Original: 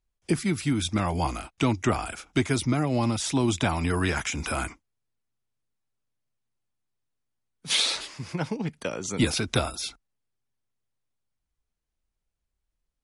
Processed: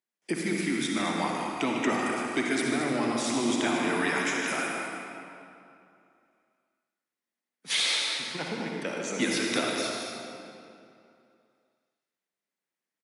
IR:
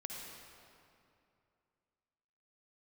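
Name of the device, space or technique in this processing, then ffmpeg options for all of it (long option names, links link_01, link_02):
stadium PA: -filter_complex "[0:a]highpass=frequency=210:width=0.5412,highpass=frequency=210:width=1.3066,equalizer=frequency=1900:width_type=o:width=0.41:gain=7.5,aecho=1:1:151.6|221.6:0.282|0.316[link_01];[1:a]atrim=start_sample=2205[link_02];[link_01][link_02]afir=irnorm=-1:irlink=0"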